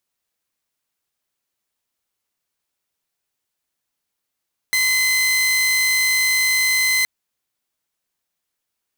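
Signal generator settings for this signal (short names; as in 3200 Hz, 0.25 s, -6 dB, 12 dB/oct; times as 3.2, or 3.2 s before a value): tone saw 2050 Hz -13 dBFS 2.32 s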